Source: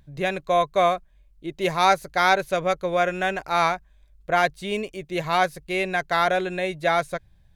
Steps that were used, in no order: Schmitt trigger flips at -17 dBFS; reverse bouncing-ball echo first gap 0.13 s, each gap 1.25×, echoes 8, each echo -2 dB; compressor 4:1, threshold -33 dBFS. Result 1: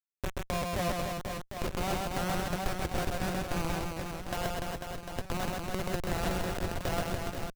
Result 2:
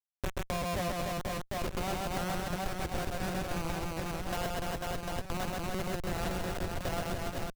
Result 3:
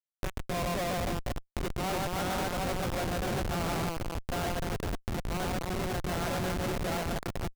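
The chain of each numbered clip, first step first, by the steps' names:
Schmitt trigger > compressor > reverse bouncing-ball echo; Schmitt trigger > reverse bouncing-ball echo > compressor; reverse bouncing-ball echo > Schmitt trigger > compressor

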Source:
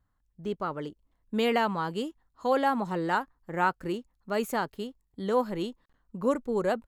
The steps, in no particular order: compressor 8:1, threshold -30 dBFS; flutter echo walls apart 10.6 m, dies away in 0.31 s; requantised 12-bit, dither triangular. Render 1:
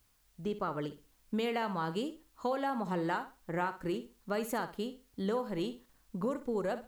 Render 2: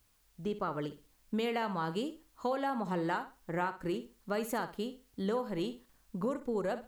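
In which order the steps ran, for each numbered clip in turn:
compressor > flutter echo > requantised; requantised > compressor > flutter echo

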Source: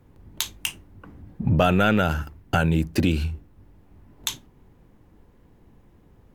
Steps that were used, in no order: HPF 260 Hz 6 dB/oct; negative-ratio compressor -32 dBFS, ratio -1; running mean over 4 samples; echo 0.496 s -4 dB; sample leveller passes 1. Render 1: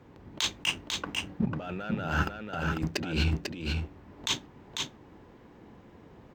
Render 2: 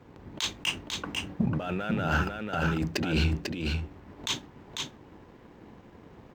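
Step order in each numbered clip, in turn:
HPF > sample leveller > running mean > negative-ratio compressor > echo; HPF > negative-ratio compressor > running mean > sample leveller > echo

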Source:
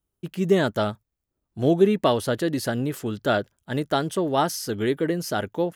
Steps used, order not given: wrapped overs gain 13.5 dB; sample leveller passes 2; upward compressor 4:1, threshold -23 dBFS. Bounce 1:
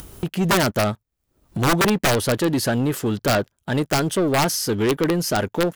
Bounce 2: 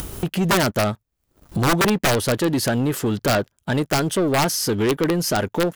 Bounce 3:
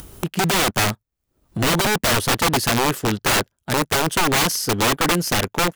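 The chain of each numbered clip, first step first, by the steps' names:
wrapped overs > sample leveller > upward compressor; upward compressor > wrapped overs > sample leveller; sample leveller > upward compressor > wrapped overs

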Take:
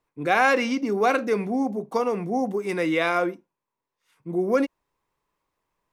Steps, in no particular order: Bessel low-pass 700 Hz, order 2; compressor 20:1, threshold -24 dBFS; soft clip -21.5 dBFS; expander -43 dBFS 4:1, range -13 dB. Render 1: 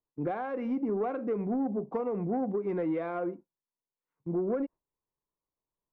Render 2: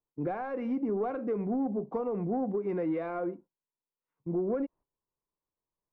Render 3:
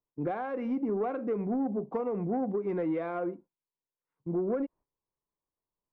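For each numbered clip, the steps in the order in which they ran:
compressor > Bessel low-pass > soft clip > expander; expander > compressor > soft clip > Bessel low-pass; expander > compressor > Bessel low-pass > soft clip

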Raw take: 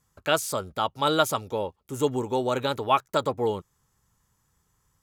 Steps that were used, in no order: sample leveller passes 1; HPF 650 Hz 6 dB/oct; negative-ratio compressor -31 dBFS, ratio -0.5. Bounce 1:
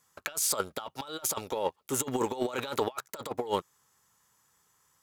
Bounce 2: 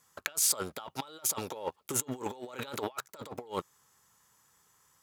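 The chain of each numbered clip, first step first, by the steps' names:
HPF > sample leveller > negative-ratio compressor; sample leveller > negative-ratio compressor > HPF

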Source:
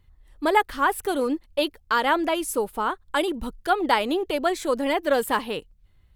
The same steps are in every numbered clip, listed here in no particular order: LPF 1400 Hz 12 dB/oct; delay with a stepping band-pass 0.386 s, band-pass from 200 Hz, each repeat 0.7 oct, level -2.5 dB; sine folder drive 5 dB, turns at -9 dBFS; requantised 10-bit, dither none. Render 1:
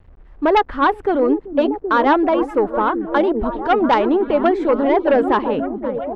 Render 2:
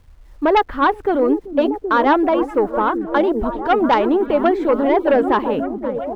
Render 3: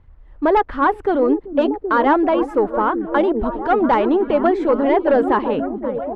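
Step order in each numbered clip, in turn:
requantised > LPF > sine folder > delay with a stepping band-pass; LPF > sine folder > requantised > delay with a stepping band-pass; sine folder > delay with a stepping band-pass > requantised > LPF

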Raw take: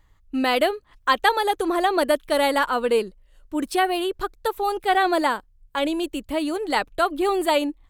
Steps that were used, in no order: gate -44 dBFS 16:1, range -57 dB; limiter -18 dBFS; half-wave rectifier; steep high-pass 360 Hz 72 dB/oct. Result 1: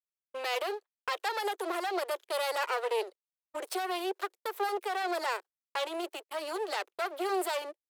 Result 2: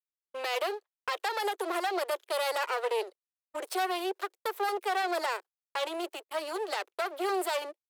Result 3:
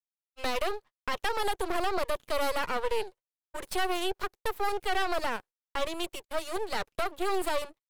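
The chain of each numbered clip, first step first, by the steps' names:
limiter > half-wave rectifier > steep high-pass > gate; half-wave rectifier > limiter > steep high-pass > gate; steep high-pass > half-wave rectifier > gate > limiter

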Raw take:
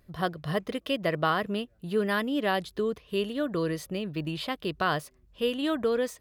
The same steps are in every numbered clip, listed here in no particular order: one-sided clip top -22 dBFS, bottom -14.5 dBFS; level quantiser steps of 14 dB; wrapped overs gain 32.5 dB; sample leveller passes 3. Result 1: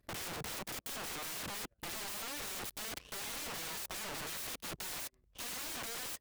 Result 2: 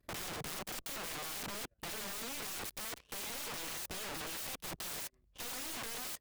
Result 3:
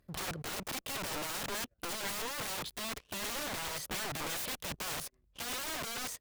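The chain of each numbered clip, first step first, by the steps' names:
one-sided clip > sample leveller > wrapped overs > level quantiser; sample leveller > one-sided clip > wrapped overs > level quantiser; sample leveller > level quantiser > one-sided clip > wrapped overs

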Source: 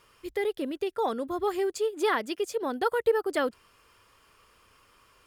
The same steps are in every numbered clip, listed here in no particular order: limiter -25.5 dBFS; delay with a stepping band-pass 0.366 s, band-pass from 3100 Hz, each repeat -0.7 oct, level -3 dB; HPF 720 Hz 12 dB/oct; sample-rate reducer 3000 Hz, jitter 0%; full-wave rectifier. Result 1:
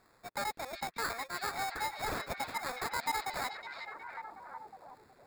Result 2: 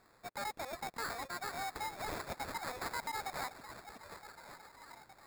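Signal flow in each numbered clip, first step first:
full-wave rectifier > HPF > limiter > sample-rate reducer > delay with a stepping band-pass; limiter > delay with a stepping band-pass > full-wave rectifier > HPF > sample-rate reducer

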